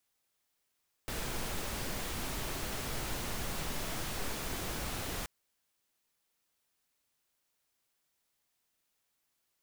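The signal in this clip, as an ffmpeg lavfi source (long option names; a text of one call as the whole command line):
ffmpeg -f lavfi -i "anoisesrc=color=pink:amplitude=0.0724:duration=4.18:sample_rate=44100:seed=1" out.wav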